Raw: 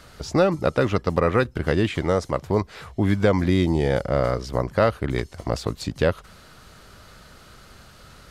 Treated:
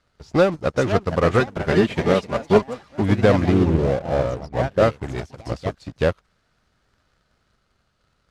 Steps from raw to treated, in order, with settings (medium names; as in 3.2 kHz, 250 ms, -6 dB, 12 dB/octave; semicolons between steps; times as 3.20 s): 3.52–4.83 s: resonances exaggerated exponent 2; in parallel at -10.5 dB: fuzz box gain 33 dB, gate -40 dBFS; 1.39–3.02 s: on the sum: comb 5 ms, depth 62%; ever faster or slower copies 575 ms, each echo +3 st, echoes 3, each echo -6 dB; distance through air 51 m; upward expansion 2.5:1, over -27 dBFS; trim +2.5 dB